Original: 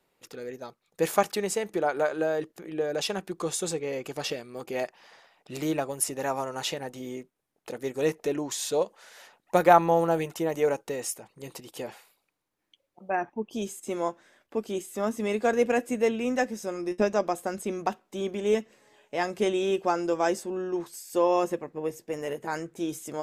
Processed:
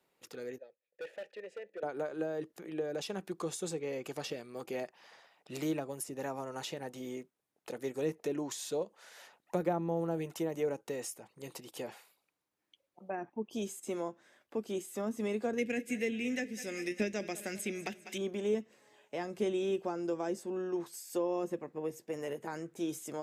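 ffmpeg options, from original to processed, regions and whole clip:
-filter_complex "[0:a]asettb=1/sr,asplit=3[s0][s1][s2];[s0]atrim=end=0.584[s3];[s1]atrim=start=0.58:end=1.83,asetpts=PTS-STARTPTS,afade=t=in:d=0.004:c=qsin,afade=t=out:st=1.246:d=0.004:c=qsin,asplit=3[s4][s5][s6];[s4]bandpass=f=530:t=q:w=8,volume=1[s7];[s5]bandpass=f=1840:t=q:w=8,volume=0.501[s8];[s6]bandpass=f=2480:t=q:w=8,volume=0.355[s9];[s7][s8][s9]amix=inputs=3:normalize=0,highshelf=f=6900:g=-8.5,volume=50.1,asoftclip=hard,volume=0.02[s10];[s2]atrim=start=1.826[s11];[s3][s10]acrossfade=d=0.004:c1=hsin:c2=qsin[s12];[s12][s11]acrossfade=d=0.004:c1=qsin:c2=hsin,asettb=1/sr,asplit=3[s13][s14][s15];[s13]atrim=end=15.584[s16];[s14]atrim=start=15.58:end=18.18,asetpts=PTS-STARTPTS,afade=t=in:d=0.004:c=qsin,afade=t=out:st=2.596:d=0.004:c=qsin,highshelf=f=1500:t=q:w=3:g=11,aecho=1:1:197|394|591|788|985:0.126|0.0692|0.0381|0.0209|0.0115,atrim=end_sample=114660[s17];[s15]atrim=start=18.176[s18];[s16][s17]acrossfade=d=0.004:c1=hsin:c2=qsin[s19];[s19][s18]acrossfade=d=0.004:c1=qsin:c2=hsin,highpass=f=100:p=1,acrossover=split=410[s20][s21];[s21]acompressor=threshold=0.0178:ratio=6[s22];[s20][s22]amix=inputs=2:normalize=0,volume=0.631"

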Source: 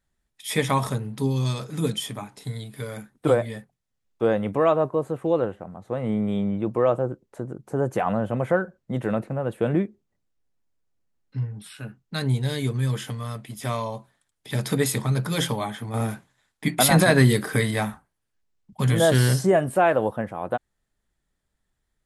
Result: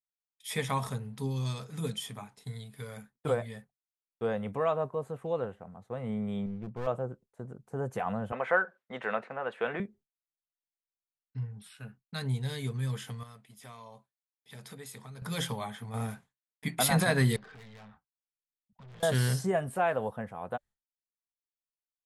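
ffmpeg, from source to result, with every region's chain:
-filter_complex "[0:a]asettb=1/sr,asplit=3[s0][s1][s2];[s0]atrim=end=6.464[s3];[s1]atrim=start=6.46:end=6.87,asetpts=PTS-STARTPTS,afade=t=in:d=0.004:c=qsin,afade=t=out:st=0.406:d=0.004:c=qsin,lowpass=1800,aeval=exprs='clip(val(0),-1,0.0447)':c=same,equalizer=f=790:t=o:w=2.2:g=-8[s4];[s2]atrim=start=6.866[s5];[s3][s4]acrossfade=d=0.004:c1=hsin:c2=qsin[s6];[s6][s5]acrossfade=d=0.004:c1=qsin:c2=hsin,asettb=1/sr,asplit=3[s7][s8][s9];[s7]atrim=end=8.324[s10];[s8]atrim=start=8.32:end=9.8,asetpts=PTS-STARTPTS,afade=t=in:d=0.004:c=qsin,afade=t=out:st=1.476:d=0.004:c=qsin,highpass=340,lowpass=5400,equalizer=f=1800:t=o:w=2.6:g=11.5[s11];[s9]atrim=start=9.796[s12];[s10][s11]acrossfade=d=0.004:c1=hsin:c2=qsin[s13];[s13][s12]acrossfade=d=0.004:c1=qsin:c2=hsin,asettb=1/sr,asplit=3[s14][s15][s16];[s14]atrim=end=13.234[s17];[s15]atrim=start=13.23:end=15.22,asetpts=PTS-STARTPTS,afade=t=in:d=0.004:c=qsin,afade=t=out:st=1.986:d=0.004:c=qsin,lowshelf=f=110:g=-11,acompressor=threshold=0.00708:ratio=2:attack=3.2:release=140:knee=1:detection=peak[s18];[s16]atrim=start=15.216[s19];[s17][s18]acrossfade=d=0.004:c1=hsin:c2=qsin[s20];[s20][s19]acrossfade=d=0.004:c1=qsin:c2=hsin,asettb=1/sr,asplit=3[s21][s22][s23];[s21]atrim=end=17.364[s24];[s22]atrim=start=17.36:end=19.03,asetpts=PTS-STARTPTS,afade=t=in:d=0.004:c=qsin,afade=t=out:st=1.666:d=0.004:c=qsin,lowpass=f=4200:w=0.5412,lowpass=f=4200:w=1.3066,aeval=exprs='(tanh(35.5*val(0)+0.25)-tanh(0.25))/35.5':c=same,acompressor=threshold=0.01:ratio=6:attack=3.2:release=140:knee=1:detection=peak[s25];[s23]atrim=start=19.026[s26];[s24][s25]acrossfade=d=0.004:c1=hsin:c2=qsin[s27];[s27][s26]acrossfade=d=0.004:c1=qsin:c2=hsin,bandreject=f=580:w=12,agate=range=0.0224:threshold=0.00891:ratio=3:detection=peak,equalizer=f=320:w=5.5:g=-14,volume=0.398"

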